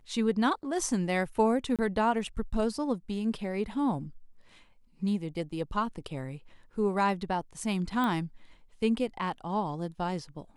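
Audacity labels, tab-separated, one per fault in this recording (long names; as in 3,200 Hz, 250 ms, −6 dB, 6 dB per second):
1.760000	1.790000	drop-out 27 ms
8.040000	8.040000	click −19 dBFS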